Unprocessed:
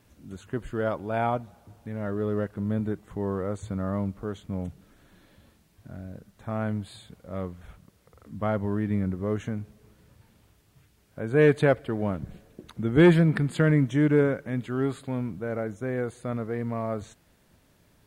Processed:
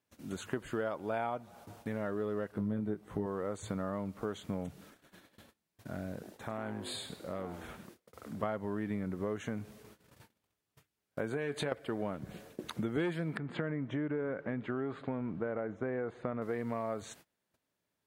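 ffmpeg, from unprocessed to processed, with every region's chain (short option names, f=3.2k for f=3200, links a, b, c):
-filter_complex "[0:a]asettb=1/sr,asplit=3[a][b][c];[a]atrim=end=2.524[d];[b]atrim=start=2.52:end=3.26,asetpts=PTS-STARTPTS,afade=t=in:d=0.004:c=qsin,afade=t=out:st=0.736:d=0.004:c=qsin,tiltshelf=f=770:g=4,bandreject=f=7.1k:w=7.8,asplit=2[e][f];[f]adelay=19,volume=-4dB[g];[e][g]amix=inputs=2:normalize=0,atrim=end_sample=32634[h];[c]atrim=start=3.256[i];[d][h]acrossfade=d=0.004:c1=hsin:c2=qsin[j];[j][i]acrossfade=d=0.004:c1=qsin:c2=hsin,asettb=1/sr,asplit=3[k][l][m];[k]atrim=end=6.134[n];[l]atrim=start=6.13:end=8.43,asetpts=PTS-STARTPTS,afade=t=in:d=0.004:c=qsin,afade=t=out:st=2.296:d=0.004:c=qsin,acompressor=threshold=-37dB:ratio=6:attack=3.2:release=140:knee=1:detection=peak,asplit=5[o][p][q][r][s];[p]adelay=101,afreqshift=150,volume=-11dB[t];[q]adelay=202,afreqshift=300,volume=-20.1dB[u];[r]adelay=303,afreqshift=450,volume=-29.2dB[v];[s]adelay=404,afreqshift=600,volume=-38.4dB[w];[o][t][u][v][w]amix=inputs=5:normalize=0,atrim=end_sample=101430[x];[m]atrim=start=8.426[y];[n][x]acrossfade=d=0.004:c1=hsin:c2=qsin[z];[z][y]acrossfade=d=0.004:c1=qsin:c2=hsin,asettb=1/sr,asplit=3[aa][ab][ac];[aa]atrim=end=11.294[ad];[ab]atrim=start=11.29:end=11.72,asetpts=PTS-STARTPTS,afade=t=in:d=0.004:c=qsin,afade=t=out:st=0.426:d=0.004:c=qsin,acompressor=threshold=-27dB:ratio=5:attack=3.2:release=140:knee=1:detection=peak,asplit=2[ae][af];[af]adelay=21,volume=-10.5dB[ag];[ae][ag]amix=inputs=2:normalize=0,atrim=end_sample=18963[ah];[ac]atrim=start=11.716[ai];[ad][ah]acrossfade=d=0.004:c1=hsin:c2=qsin[aj];[aj][ai]acrossfade=d=0.004:c1=qsin:c2=hsin,asettb=1/sr,asplit=3[ak][al][am];[ak]atrim=end=13.374[an];[al]atrim=start=13.37:end=16.42,asetpts=PTS-STARTPTS,afade=t=in:d=0.004:c=qsin,afade=t=out:st=3.046:d=0.004:c=qsin,lowpass=1.8k,acompressor=threshold=-28dB:ratio=2.5:attack=3.2:release=140:knee=1:detection=peak[ao];[am]atrim=start=16.416[ap];[an][ao]acrossfade=d=0.004:c1=hsin:c2=qsin[aq];[aq][ap]acrossfade=d=0.004:c1=qsin:c2=hsin,agate=range=-26dB:threshold=-55dB:ratio=16:detection=peak,highpass=f=330:p=1,acompressor=threshold=-39dB:ratio=6,volume=6.5dB"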